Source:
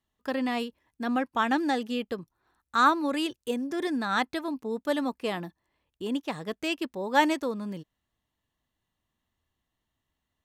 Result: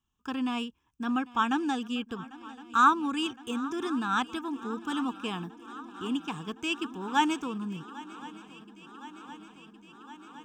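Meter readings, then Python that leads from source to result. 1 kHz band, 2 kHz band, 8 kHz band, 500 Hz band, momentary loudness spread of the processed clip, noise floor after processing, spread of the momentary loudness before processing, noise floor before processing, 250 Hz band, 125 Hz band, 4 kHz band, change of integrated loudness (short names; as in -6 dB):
0.0 dB, -2.5 dB, +0.5 dB, -8.5 dB, 19 LU, -60 dBFS, 13 LU, -84 dBFS, -1.0 dB, +0.5 dB, -0.5 dB, -1.5 dB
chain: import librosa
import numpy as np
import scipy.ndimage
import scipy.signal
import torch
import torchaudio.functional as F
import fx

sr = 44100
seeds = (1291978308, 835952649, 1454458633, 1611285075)

y = fx.fixed_phaser(x, sr, hz=2900.0, stages=8)
y = fx.echo_swing(y, sr, ms=1063, ratio=3, feedback_pct=75, wet_db=-19.5)
y = y * librosa.db_to_amplitude(1.5)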